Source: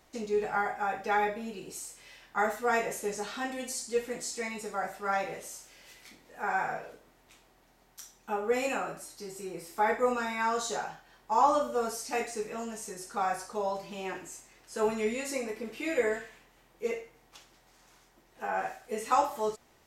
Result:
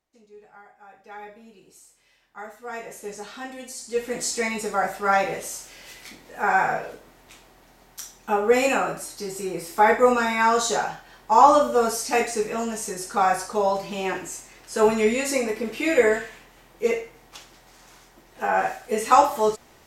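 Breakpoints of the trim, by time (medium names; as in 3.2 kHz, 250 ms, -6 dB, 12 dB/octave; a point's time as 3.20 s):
0.73 s -19 dB
1.35 s -10 dB
2.52 s -10 dB
3.11 s -1 dB
3.75 s -1 dB
4.23 s +10 dB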